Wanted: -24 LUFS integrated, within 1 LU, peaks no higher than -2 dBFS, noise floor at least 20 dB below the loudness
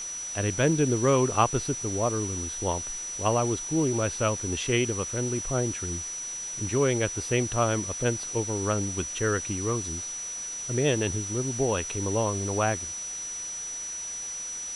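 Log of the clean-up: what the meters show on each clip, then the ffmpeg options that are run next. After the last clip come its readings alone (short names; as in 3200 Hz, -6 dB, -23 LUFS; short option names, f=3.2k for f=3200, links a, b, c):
steady tone 5900 Hz; tone level -33 dBFS; noise floor -36 dBFS; noise floor target -48 dBFS; loudness -27.5 LUFS; peak -9.0 dBFS; loudness target -24.0 LUFS
-> -af "bandreject=f=5.9k:w=30"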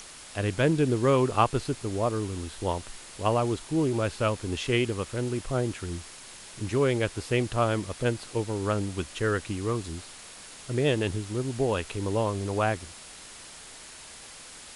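steady tone none; noise floor -46 dBFS; noise floor target -49 dBFS
-> -af "afftdn=nr=6:nf=-46"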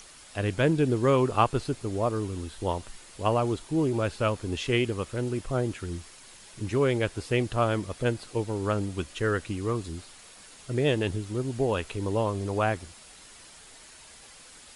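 noise floor -50 dBFS; loudness -28.5 LUFS; peak -9.0 dBFS; loudness target -24.0 LUFS
-> -af "volume=4.5dB"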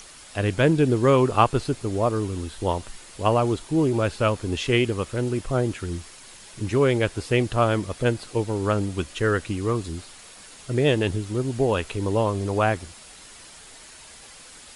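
loudness -24.0 LUFS; peak -4.0 dBFS; noise floor -46 dBFS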